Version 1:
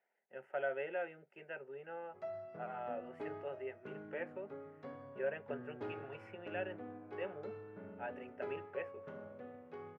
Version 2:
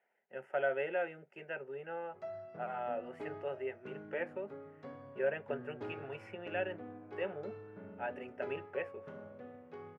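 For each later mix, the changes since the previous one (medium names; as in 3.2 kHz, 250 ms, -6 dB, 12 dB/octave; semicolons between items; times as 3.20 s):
speech +4.5 dB; master: add tone controls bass +2 dB, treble +4 dB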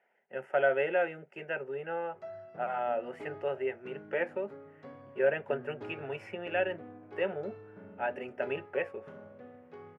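speech +6.5 dB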